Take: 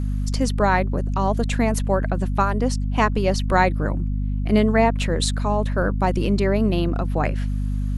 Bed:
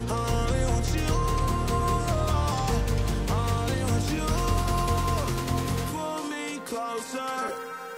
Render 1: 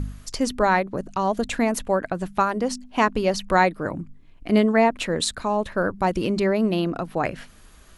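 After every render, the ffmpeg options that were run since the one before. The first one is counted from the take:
-af "bandreject=f=50:t=h:w=4,bandreject=f=100:t=h:w=4,bandreject=f=150:t=h:w=4,bandreject=f=200:t=h:w=4,bandreject=f=250:t=h:w=4"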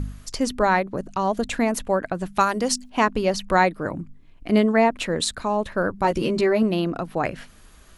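-filter_complex "[0:a]asettb=1/sr,asplit=3[a][b][c];[a]atrim=end=2.364[d];[b]atrim=start=2.36:end=2.9,asetpts=PTS-STARTPTS,afade=t=in:d=0.004:c=qsin,afade=t=out:st=0.536:d=0.004:c=qsin,highshelf=f=2.7k:g=11[e];[c]atrim=start=2.896[f];[d][e]acrossfade=d=0.004:c1=hsin:c2=qsin[g];[g][f]acrossfade=d=0.004:c1=qsin:c2=hsin,asettb=1/sr,asplit=3[h][i][j];[h]atrim=end=6.034[k];[i]atrim=start=6.03:end=6.63,asetpts=PTS-STARTPTS,afade=t=in:d=0.004:c=qsin,afade=t=out:st=0.596:d=0.004:c=qsin,asplit=2[l][m];[m]adelay=13,volume=-3.5dB[n];[l][n]amix=inputs=2:normalize=0,atrim=end_sample=26460[o];[j]atrim=start=6.626[p];[k][o]acrossfade=d=0.004:c1=hsin:c2=qsin[q];[q][p]acrossfade=d=0.004:c1=qsin:c2=hsin"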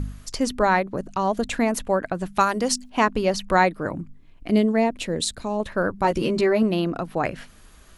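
-filter_complex "[0:a]asettb=1/sr,asplit=3[a][b][c];[a]atrim=end=4.504[d];[b]atrim=start=4.5:end=5.6,asetpts=PTS-STARTPTS,afade=t=in:d=0.004:c=qsin,afade=t=out:st=1.096:d=0.004:c=qsin,equalizer=f=1.3k:t=o:w=1.5:g=-10[e];[c]atrim=start=5.596[f];[d][e]acrossfade=d=0.004:c1=hsin:c2=qsin[g];[g][f]acrossfade=d=0.004:c1=qsin:c2=hsin"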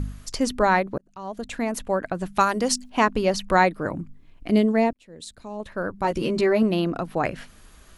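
-filter_complex "[0:a]asplit=3[a][b][c];[a]atrim=end=0.98,asetpts=PTS-STARTPTS,afade=t=out:st=0.976:d=0.004:c=hsin[d];[b]atrim=start=0.98:end=4.93,asetpts=PTS-STARTPTS,afade=t=in:d=1.68:c=qsin,afade=t=out:st=3.946:d=0.004:c=hsin[e];[c]atrim=start=4.93,asetpts=PTS-STARTPTS,afade=t=in:d=1.62[f];[d][e][f]concat=n=3:v=0:a=1"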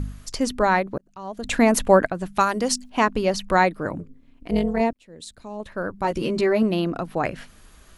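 -filter_complex "[0:a]asettb=1/sr,asplit=3[a][b][c];[a]atrim=end=3.994[d];[b]atrim=start=3.99:end=4.81,asetpts=PTS-STARTPTS,afade=t=in:d=0.004:c=qsin,afade=t=out:st=0.816:d=0.004:c=qsin,tremolo=f=260:d=0.71[e];[c]atrim=start=4.806[f];[d][e]acrossfade=d=0.004:c1=hsin:c2=qsin[g];[g][f]acrossfade=d=0.004:c1=qsin:c2=hsin,asplit=3[h][i][j];[h]atrim=end=1.442[k];[i]atrim=start=1.438:end=2.072,asetpts=PTS-STARTPTS,volume=9.5dB[l];[j]atrim=start=2.068[m];[k][l]acrossfade=d=0.004:c1=hsin:c2=hsin[n];[n][m]acrossfade=d=0.004:c1=hsin:c2=hsin"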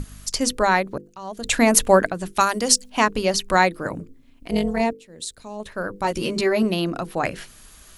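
-af "highshelf=f=3.3k:g=10.5,bandreject=f=50:t=h:w=6,bandreject=f=100:t=h:w=6,bandreject=f=150:t=h:w=6,bandreject=f=200:t=h:w=6,bandreject=f=250:t=h:w=6,bandreject=f=300:t=h:w=6,bandreject=f=350:t=h:w=6,bandreject=f=400:t=h:w=6,bandreject=f=450:t=h:w=6,bandreject=f=500:t=h:w=6"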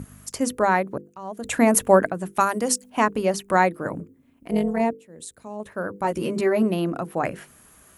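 -af "highpass=96,equalizer=f=4.3k:t=o:w=1.5:g=-13.5"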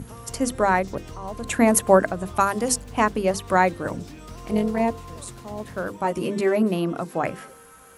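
-filter_complex "[1:a]volume=-14dB[a];[0:a][a]amix=inputs=2:normalize=0"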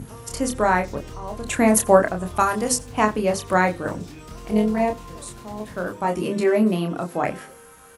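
-filter_complex "[0:a]asplit=2[a][b];[b]adelay=28,volume=-5dB[c];[a][c]amix=inputs=2:normalize=0,asplit=2[d][e];[e]adelay=87.46,volume=-24dB,highshelf=f=4k:g=-1.97[f];[d][f]amix=inputs=2:normalize=0"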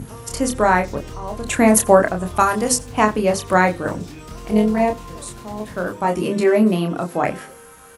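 -af "volume=3.5dB,alimiter=limit=-1dB:level=0:latency=1"

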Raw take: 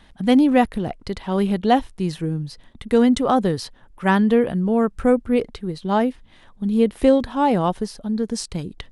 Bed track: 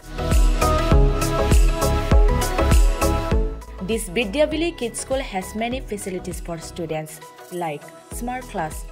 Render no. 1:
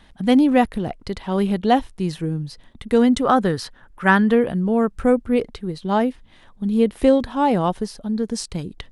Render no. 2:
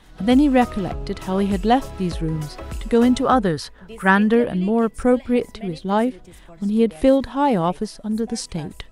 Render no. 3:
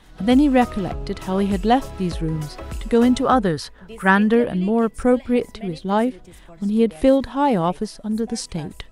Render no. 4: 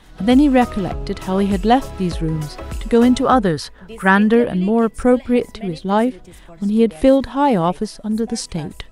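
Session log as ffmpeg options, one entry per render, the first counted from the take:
-filter_complex "[0:a]asettb=1/sr,asplit=3[a][b][c];[a]atrim=end=3.244[d];[b]atrim=start=3.24:end=4.35,asetpts=PTS-STARTPTS,afade=t=in:d=0.004:c=qsin,afade=t=out:st=1.106:d=0.004:c=qsin,equalizer=f=1.5k:w=1.9:g=8[e];[c]atrim=start=4.346[f];[d][e]acrossfade=d=0.004:c1=hsin:c2=qsin[g];[g][f]acrossfade=d=0.004:c1=qsin:c2=hsin"
-filter_complex "[1:a]volume=-15.5dB[a];[0:a][a]amix=inputs=2:normalize=0"
-af anull
-af "volume=3dB,alimiter=limit=-2dB:level=0:latency=1"

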